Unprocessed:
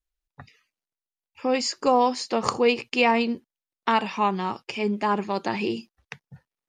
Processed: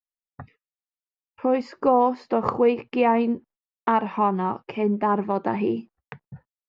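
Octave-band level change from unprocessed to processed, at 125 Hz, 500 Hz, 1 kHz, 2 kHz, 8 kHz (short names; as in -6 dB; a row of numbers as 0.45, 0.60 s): +3.0 dB, +2.0 dB, +1.5 dB, -6.5 dB, under -25 dB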